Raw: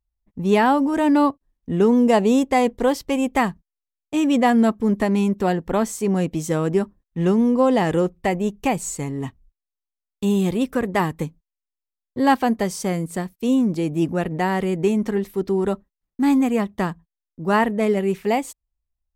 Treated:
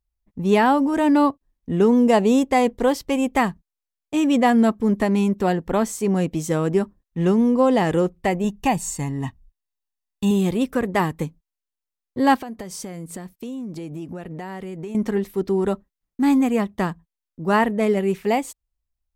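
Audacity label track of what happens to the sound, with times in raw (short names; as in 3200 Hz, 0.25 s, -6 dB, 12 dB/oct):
8.440000	10.310000	comb 1.1 ms, depth 50%
12.360000	14.950000	compressor 8:1, threshold -29 dBFS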